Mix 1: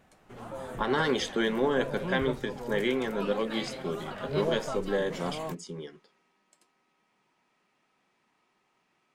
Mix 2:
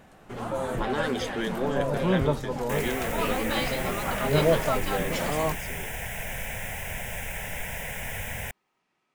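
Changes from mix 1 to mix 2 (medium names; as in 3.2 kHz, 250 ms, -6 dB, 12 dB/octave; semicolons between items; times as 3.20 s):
speech -3.5 dB; first sound +9.5 dB; second sound: unmuted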